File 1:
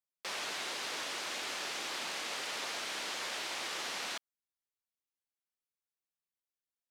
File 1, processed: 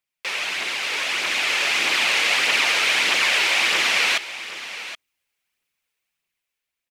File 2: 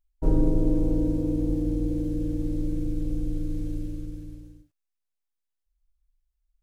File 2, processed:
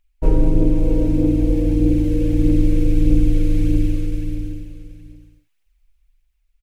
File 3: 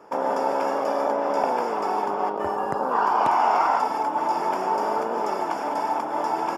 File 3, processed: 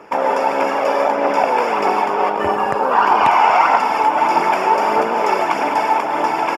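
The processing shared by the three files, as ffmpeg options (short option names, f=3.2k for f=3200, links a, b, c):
-filter_complex "[0:a]aphaser=in_gain=1:out_gain=1:delay=2.4:decay=0.33:speed=1.6:type=triangular,equalizer=f=2.4k:t=o:w=0.88:g=11.5,asplit=2[a][b];[b]alimiter=limit=-12dB:level=0:latency=1:release=254,volume=1.5dB[c];[a][c]amix=inputs=2:normalize=0,dynaudnorm=f=400:g=7:m=7.5dB,aecho=1:1:772:0.211,volume=-1dB"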